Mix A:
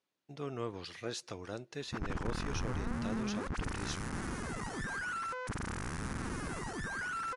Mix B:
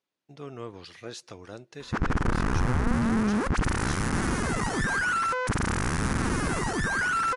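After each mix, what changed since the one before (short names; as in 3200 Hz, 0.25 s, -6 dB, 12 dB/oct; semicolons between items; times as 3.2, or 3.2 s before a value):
background +12.0 dB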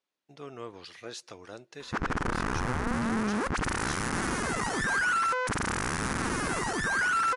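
master: add low shelf 230 Hz -9.5 dB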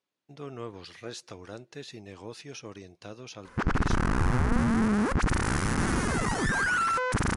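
background: entry +1.65 s; master: add low shelf 230 Hz +9.5 dB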